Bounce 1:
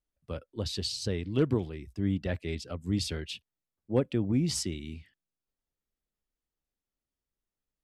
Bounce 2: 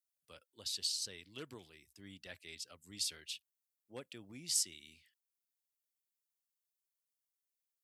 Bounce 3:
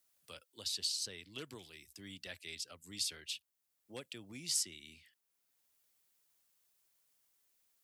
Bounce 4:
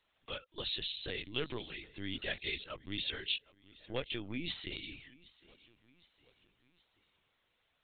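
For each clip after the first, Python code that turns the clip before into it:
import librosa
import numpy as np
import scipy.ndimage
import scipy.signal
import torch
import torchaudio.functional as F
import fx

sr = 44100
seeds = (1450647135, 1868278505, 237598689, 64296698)

y1 = scipy.signal.sosfilt(scipy.signal.butter(2, 64.0, 'highpass', fs=sr, output='sos'), x)
y1 = scipy.signal.lfilter([1.0, -0.97], [1.0], y1)
y1 = F.gain(torch.from_numpy(y1), 1.5).numpy()
y2 = fx.band_squash(y1, sr, depth_pct=40)
y2 = F.gain(torch.from_numpy(y2), 2.0).numpy()
y3 = fx.echo_feedback(y2, sr, ms=767, feedback_pct=51, wet_db=-22.5)
y3 = fx.lpc_vocoder(y3, sr, seeds[0], excitation='pitch_kept', order=16)
y3 = F.gain(torch.from_numpy(y3), 10.0).numpy()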